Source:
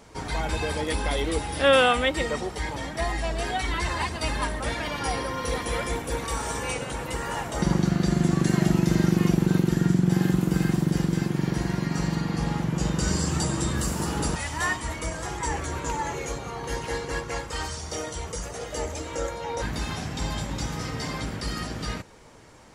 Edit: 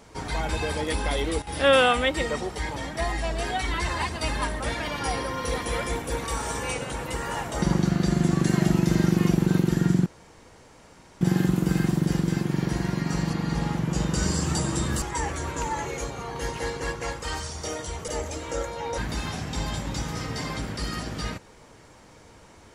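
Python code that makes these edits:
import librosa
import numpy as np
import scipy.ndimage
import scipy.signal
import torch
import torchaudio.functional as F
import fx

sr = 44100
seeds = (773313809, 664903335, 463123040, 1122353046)

y = fx.edit(x, sr, fx.fade_down_up(start_s=1.18, length_s=0.53, db=-12.5, fade_s=0.24, curve='log'),
    fx.insert_room_tone(at_s=10.06, length_s=1.15),
    fx.reverse_span(start_s=12.15, length_s=0.25),
    fx.cut(start_s=13.87, length_s=1.43),
    fx.cut(start_s=18.36, length_s=0.36), tone=tone)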